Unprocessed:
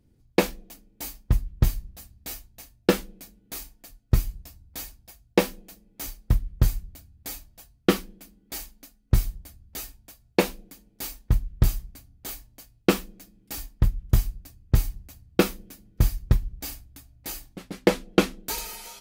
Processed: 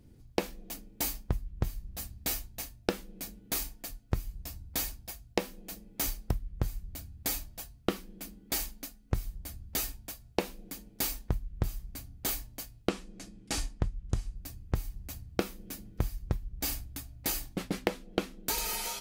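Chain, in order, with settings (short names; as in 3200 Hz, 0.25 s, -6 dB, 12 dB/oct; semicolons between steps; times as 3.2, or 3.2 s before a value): 12.89–14.36 LPF 9200 Hz 24 dB/oct; compressor 16:1, threshold -33 dBFS, peak gain reduction 21.5 dB; gain +6 dB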